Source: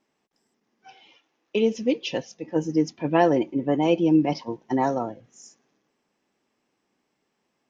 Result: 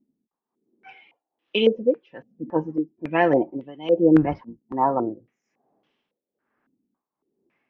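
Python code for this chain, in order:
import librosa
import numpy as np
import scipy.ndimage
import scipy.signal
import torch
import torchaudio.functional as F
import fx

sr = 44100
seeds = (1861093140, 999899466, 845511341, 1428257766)

y = fx.octave_divider(x, sr, octaves=1, level_db=-6.0, at=(4.15, 4.59))
y = y * (1.0 - 0.9 / 2.0 + 0.9 / 2.0 * np.cos(2.0 * np.pi * 1.2 * (np.arange(len(y)) / sr)))
y = fx.filter_held_lowpass(y, sr, hz=3.6, low_hz=250.0, high_hz=3200.0)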